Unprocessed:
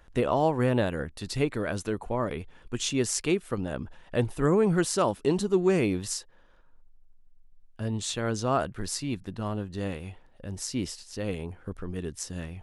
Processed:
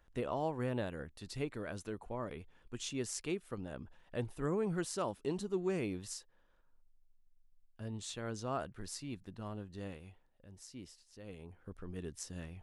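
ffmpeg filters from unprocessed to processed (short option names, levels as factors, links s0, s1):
-af "volume=0.794,afade=t=out:st=9.82:d=0.64:silence=0.446684,afade=t=in:st=11.23:d=0.78:silence=0.316228"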